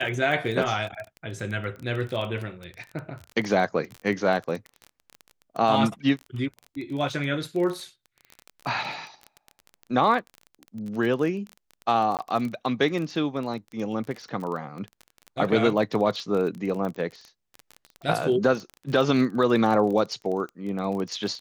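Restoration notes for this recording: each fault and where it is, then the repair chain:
crackle 23/s -30 dBFS
12.17–12.19 gap 18 ms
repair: de-click; interpolate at 12.17, 18 ms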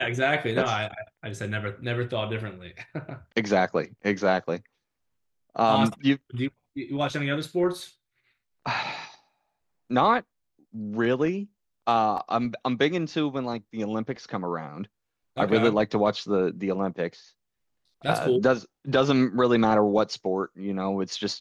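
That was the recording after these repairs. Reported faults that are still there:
none

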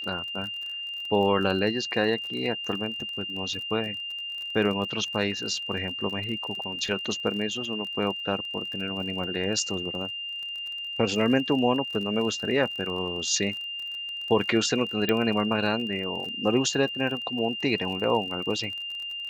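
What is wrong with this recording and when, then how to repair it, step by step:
crackle 33/s -34 dBFS
tone 2800 Hz -32 dBFS
15.09 pop -11 dBFS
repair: de-click; notch 2800 Hz, Q 30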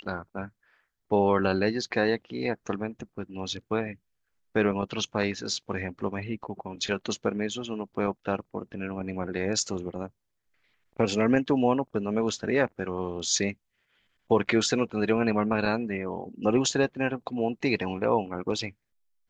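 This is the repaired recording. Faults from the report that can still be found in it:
15.09 pop

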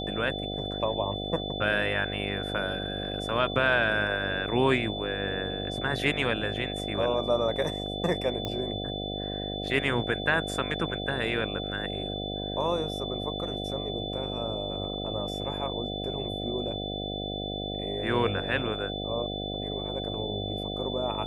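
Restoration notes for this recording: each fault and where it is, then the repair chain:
buzz 50 Hz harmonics 15 -35 dBFS
tone 3500 Hz -36 dBFS
8.45 pop -18 dBFS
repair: de-click; notch 3500 Hz, Q 30; de-hum 50 Hz, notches 15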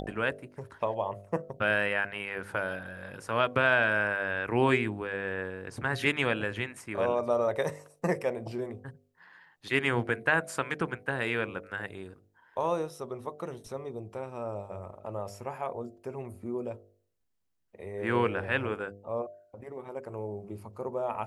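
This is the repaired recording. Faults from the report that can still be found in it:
none

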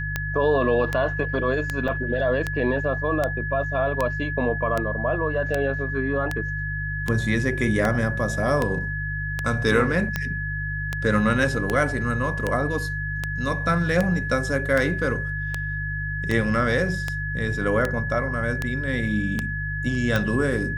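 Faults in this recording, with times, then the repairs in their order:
hum 50 Hz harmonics 3 -30 dBFS
tick 78 rpm -10 dBFS
tone 1700 Hz -29 dBFS
1.88 gap 4.7 ms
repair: de-click; de-hum 50 Hz, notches 3; notch 1700 Hz, Q 30; interpolate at 1.88, 4.7 ms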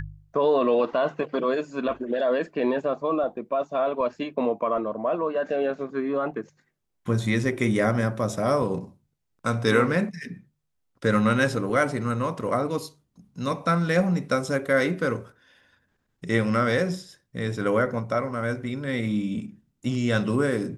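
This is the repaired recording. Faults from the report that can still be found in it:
none

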